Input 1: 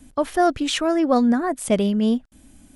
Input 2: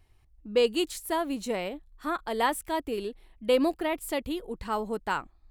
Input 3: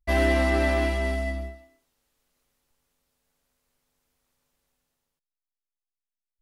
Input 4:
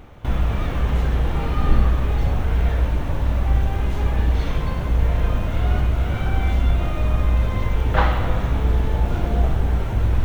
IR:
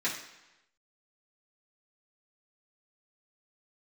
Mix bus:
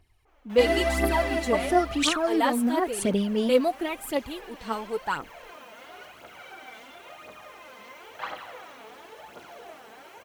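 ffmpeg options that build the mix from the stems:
-filter_complex "[0:a]acompressor=threshold=0.1:ratio=6,adelay=1350,volume=1.33[s0];[1:a]volume=0.841,asplit=2[s1][s2];[2:a]adelay=500,volume=0.631[s3];[3:a]highpass=520,bandreject=f=3600:w=12,adynamicequalizer=threshold=0.00355:dfrequency=2300:dqfactor=0.7:tfrequency=2300:tqfactor=0.7:attack=5:release=100:ratio=0.375:range=2.5:mode=boostabove:tftype=highshelf,adelay=250,volume=0.188[s4];[s2]apad=whole_len=181105[s5];[s0][s5]sidechaincompress=threshold=0.0282:ratio=8:attack=10:release=1390[s6];[s6][s1][s3][s4]amix=inputs=4:normalize=0,lowshelf=f=83:g=-11,aphaser=in_gain=1:out_gain=1:delay=4.7:decay=0.59:speed=0.96:type=triangular"

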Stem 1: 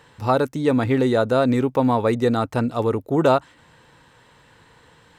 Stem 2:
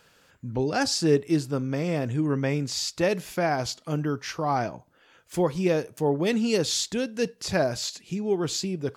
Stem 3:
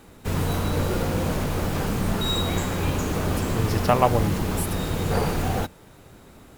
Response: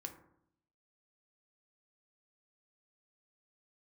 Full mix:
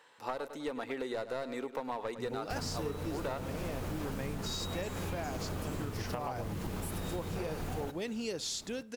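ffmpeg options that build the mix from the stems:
-filter_complex "[0:a]highpass=460,aeval=exprs='clip(val(0),-1,0.112)':c=same,volume=0.398,asplit=2[s0][s1];[s1]volume=0.2[s2];[1:a]bass=f=250:g=-5,treble=f=4000:g=1,adelay=1750,volume=0.422[s3];[2:a]acompressor=threshold=0.0631:ratio=6,adelay=2250,volume=0.562,asplit=2[s4][s5];[s5]volume=0.141[s6];[s2][s6]amix=inputs=2:normalize=0,aecho=0:1:102|204|306|408|510:1|0.35|0.122|0.0429|0.015[s7];[s0][s3][s4][s7]amix=inputs=4:normalize=0,acompressor=threshold=0.02:ratio=5"

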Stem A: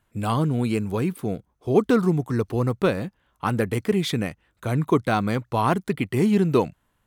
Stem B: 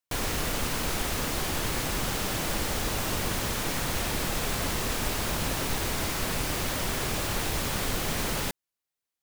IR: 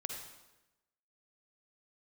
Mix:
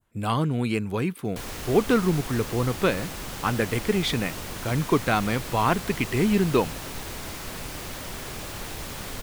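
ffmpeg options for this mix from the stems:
-filter_complex "[0:a]adynamicequalizer=threshold=0.00891:dfrequency=2400:dqfactor=0.72:tfrequency=2400:tqfactor=0.72:attack=5:release=100:ratio=0.375:range=3:mode=boostabove:tftype=bell,volume=0.75[s0];[1:a]acompressor=mode=upward:threshold=0.0178:ratio=2.5,adelay=1250,volume=0.501[s1];[s0][s1]amix=inputs=2:normalize=0"

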